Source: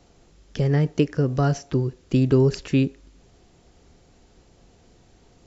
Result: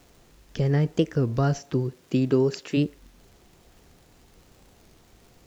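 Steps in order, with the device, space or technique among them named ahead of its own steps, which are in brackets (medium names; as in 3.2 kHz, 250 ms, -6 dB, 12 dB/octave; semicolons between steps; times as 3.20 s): warped LP (warped record 33 1/3 rpm, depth 160 cents; crackle; pink noise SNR 35 dB); 1.60–2.76 s: high-pass 84 Hz -> 260 Hz 12 dB/octave; trim -2 dB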